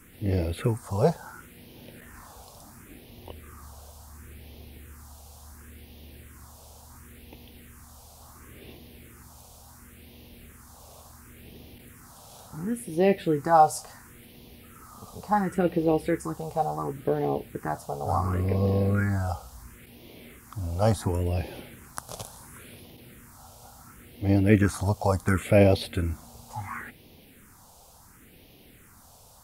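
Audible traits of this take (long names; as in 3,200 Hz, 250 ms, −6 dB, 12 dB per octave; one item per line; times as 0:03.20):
phaser sweep stages 4, 0.71 Hz, lowest notch 310–1,400 Hz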